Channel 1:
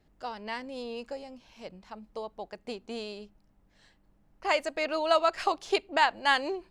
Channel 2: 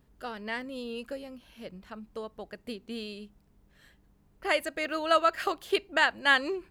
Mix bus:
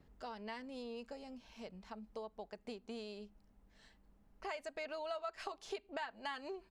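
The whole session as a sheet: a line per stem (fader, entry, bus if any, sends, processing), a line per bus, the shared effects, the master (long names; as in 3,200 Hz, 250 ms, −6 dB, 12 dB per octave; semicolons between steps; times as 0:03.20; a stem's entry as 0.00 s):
−3.5 dB, 0.00 s, no send, downward compressor, threshold −27 dBFS, peak gain reduction 9 dB
0.0 dB, 4 ms, no send, low-pass filter 1,900 Hz; automatic ducking −12 dB, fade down 0.25 s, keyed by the first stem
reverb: not used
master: downward compressor 2 to 1, threshold −48 dBFS, peak gain reduction 12 dB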